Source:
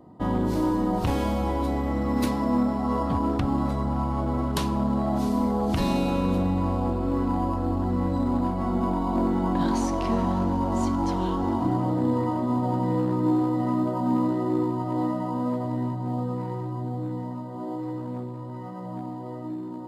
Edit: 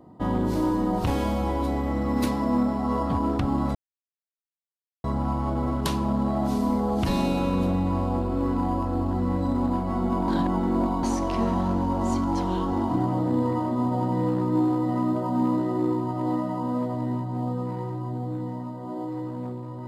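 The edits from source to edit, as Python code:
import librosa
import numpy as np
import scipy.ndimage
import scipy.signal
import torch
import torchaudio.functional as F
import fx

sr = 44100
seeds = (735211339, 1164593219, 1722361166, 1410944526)

y = fx.edit(x, sr, fx.insert_silence(at_s=3.75, length_s=1.29),
    fx.reverse_span(start_s=8.99, length_s=0.75), tone=tone)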